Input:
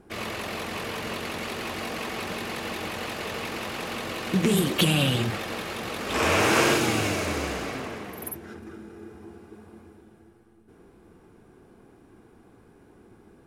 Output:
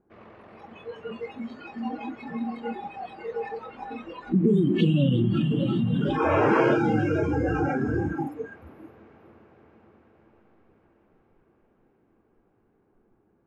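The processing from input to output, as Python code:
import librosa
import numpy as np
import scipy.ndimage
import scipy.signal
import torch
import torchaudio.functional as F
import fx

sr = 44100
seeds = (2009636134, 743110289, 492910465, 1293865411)

p1 = scipy.signal.sosfilt(scipy.signal.butter(2, 1300.0, 'lowpass', fs=sr, output='sos'), x)
p2 = fx.low_shelf(p1, sr, hz=70.0, db=-6.0)
p3 = fx.echo_diffused(p2, sr, ms=538, feedback_pct=66, wet_db=-9.0)
p4 = fx.over_compress(p3, sr, threshold_db=-32.0, ratio=-1.0)
p5 = p3 + (p4 * librosa.db_to_amplitude(2.0))
p6 = p5 + 10.0 ** (-12.0 / 20.0) * np.pad(p5, (int(351 * sr / 1000.0), 0))[:len(p5)]
p7 = fx.noise_reduce_blind(p6, sr, reduce_db=24)
y = p7 * librosa.db_to_amplitude(1.5)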